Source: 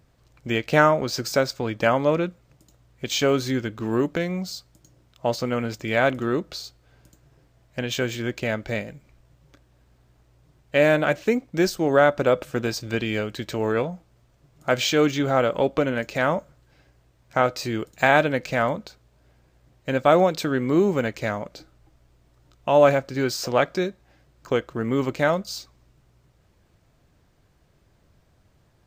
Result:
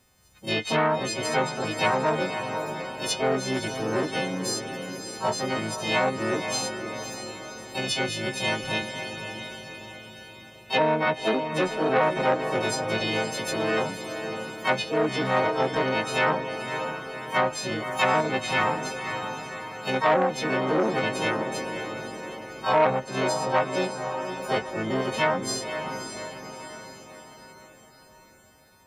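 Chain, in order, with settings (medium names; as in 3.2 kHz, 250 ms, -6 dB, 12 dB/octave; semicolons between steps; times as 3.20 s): partials quantised in pitch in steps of 3 st; low-pass that closes with the level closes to 920 Hz, closed at -13 dBFS; harmony voices +7 st -2 dB; on a send: echo that smears into a reverb 562 ms, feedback 53%, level -8 dB; on the sum: transformer saturation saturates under 1.2 kHz; trim -4.5 dB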